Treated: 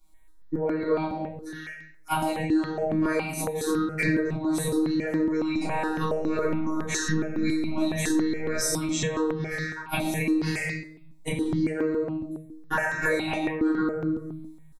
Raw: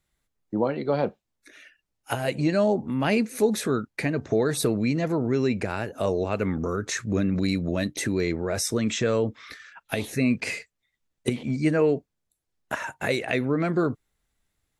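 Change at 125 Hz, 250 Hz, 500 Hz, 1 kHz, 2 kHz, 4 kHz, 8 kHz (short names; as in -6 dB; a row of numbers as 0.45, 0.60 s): -3.5, +0.5, -3.5, +1.5, +2.0, -2.0, +1.0 dB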